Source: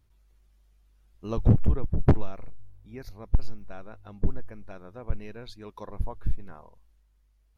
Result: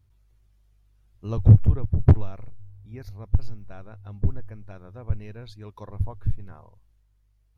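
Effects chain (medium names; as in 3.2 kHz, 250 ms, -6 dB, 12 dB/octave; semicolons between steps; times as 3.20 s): peaking EQ 100 Hz +12.5 dB 0.89 oct; trim -2 dB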